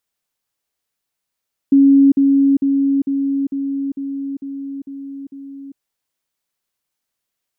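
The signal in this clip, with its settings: level ladder 276 Hz -6.5 dBFS, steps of -3 dB, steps 9, 0.40 s 0.05 s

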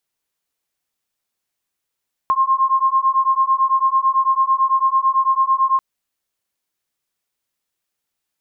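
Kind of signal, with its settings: beating tones 1060 Hz, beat 9 Hz, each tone -16.5 dBFS 3.49 s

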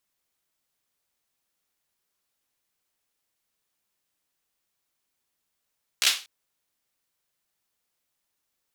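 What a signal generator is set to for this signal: hand clap length 0.24 s, apart 15 ms, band 3300 Hz, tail 0.32 s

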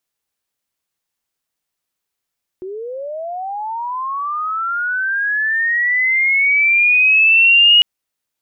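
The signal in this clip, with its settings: chirp linear 360 Hz -> 2900 Hz -25 dBFS -> -6 dBFS 5.20 s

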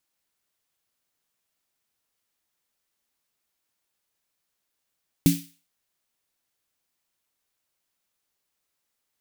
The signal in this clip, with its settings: snare drum length 0.41 s, tones 170 Hz, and 280 Hz, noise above 2200 Hz, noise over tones -10.5 dB, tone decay 0.29 s, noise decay 0.41 s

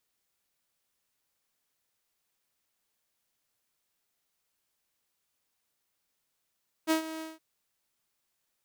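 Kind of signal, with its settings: ADSR saw 319 Hz, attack 38 ms, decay 0.108 s, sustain -14.5 dB, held 0.34 s, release 0.178 s -19.5 dBFS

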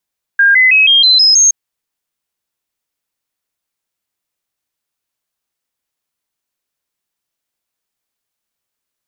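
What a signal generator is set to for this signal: stepped sine 1610 Hz up, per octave 3, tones 7, 0.16 s, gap 0.00 s -5 dBFS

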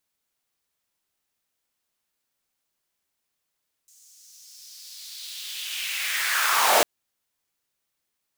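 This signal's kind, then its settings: swept filtered noise pink, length 2.95 s highpass, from 6800 Hz, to 530 Hz, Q 2.9, linear, gain ramp +36.5 dB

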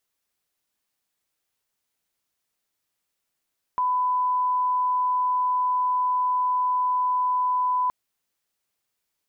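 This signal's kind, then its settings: line-up tone -20 dBFS 4.12 s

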